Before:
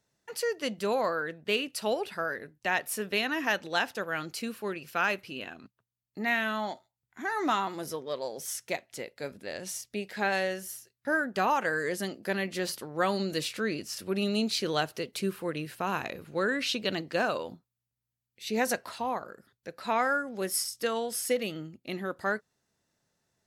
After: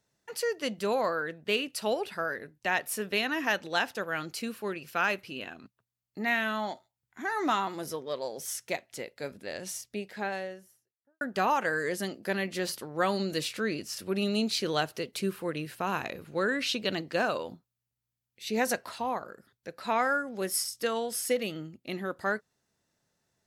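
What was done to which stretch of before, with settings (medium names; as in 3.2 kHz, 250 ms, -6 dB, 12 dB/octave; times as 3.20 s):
9.63–11.21 s: studio fade out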